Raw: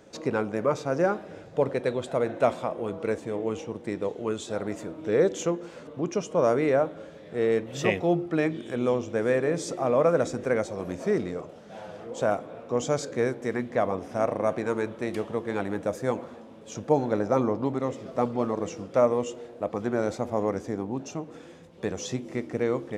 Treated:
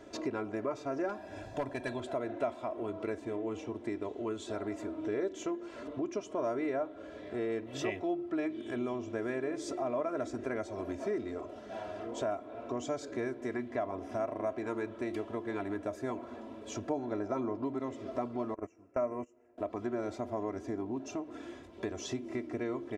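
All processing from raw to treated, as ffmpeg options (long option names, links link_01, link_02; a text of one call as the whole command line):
ffmpeg -i in.wav -filter_complex "[0:a]asettb=1/sr,asplit=3[link_01][link_02][link_03];[link_01]atrim=end=1.094[link_04];[link_02]atrim=start=1.09:end=2,asetpts=PTS-STARTPTS,afade=type=in:duration=0.004:curve=qsin,afade=type=out:start_time=0.906:duration=0.004:curve=qsin,highshelf=frequency=6100:gain=9.5,aecho=1:1:1.2:0.53,atrim=end_sample=40131,aeval=exprs='0.15*(abs(mod(val(0)/0.15+3,4)-2)-1)':channel_layout=same[link_05];[link_03]atrim=start=1.996[link_06];[link_04][link_05]acrossfade=duration=0.004:curve1=hsin:curve2=qsin[link_07];[link_07][link_06]acrossfade=duration=0.004:curve1=qsin:curve2=hsin,asettb=1/sr,asplit=3[link_08][link_09][link_10];[link_08]atrim=end=18.544[link_11];[link_09]atrim=start=18.54:end=19.58,asetpts=PTS-STARTPTS,afade=type=in:duration=0.004:curve=qsin,afade=type=out:start_time=1.036:duration=0.004:curve=qsin,agate=range=-22dB:threshold=-30dB:ratio=16:release=100:detection=peak,asuperstop=centerf=3900:order=8:qfactor=1.5[link_12];[link_10]atrim=start=19.576[link_13];[link_11][link_12]acrossfade=duration=0.004:curve1=hsin:curve2=qsin[link_14];[link_14][link_13]acrossfade=duration=0.004:curve1=qsin:curve2=hsin,highshelf=frequency=5000:gain=-8.5,aecho=1:1:3:0.85,acompressor=threshold=-37dB:ratio=2.5" out.wav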